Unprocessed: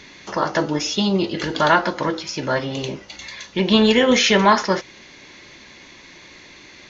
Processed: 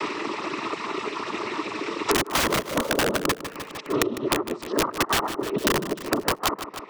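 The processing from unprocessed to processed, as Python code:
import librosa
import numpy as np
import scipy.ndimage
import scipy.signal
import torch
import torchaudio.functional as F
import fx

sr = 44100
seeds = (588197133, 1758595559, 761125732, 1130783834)

p1 = np.flip(x).copy()
p2 = fx.dereverb_blind(p1, sr, rt60_s=1.1)
p3 = fx.transient(p2, sr, attack_db=8, sustain_db=0)
p4 = fx.env_lowpass_down(p3, sr, base_hz=720.0, full_db=-15.0)
p5 = fx.double_bandpass(p4, sr, hz=630.0, octaves=1.3)
p6 = fx.noise_vocoder(p5, sr, seeds[0], bands=12)
p7 = (np.mod(10.0 ** (20.5 / 20.0) * p6 + 1.0, 2.0) - 1.0) / 10.0 ** (20.5 / 20.0)
p8 = p7 + fx.echo_feedback(p7, sr, ms=152, feedback_pct=46, wet_db=-14.5, dry=0)
p9 = fx.band_squash(p8, sr, depth_pct=100)
y = p9 * 10.0 ** (5.5 / 20.0)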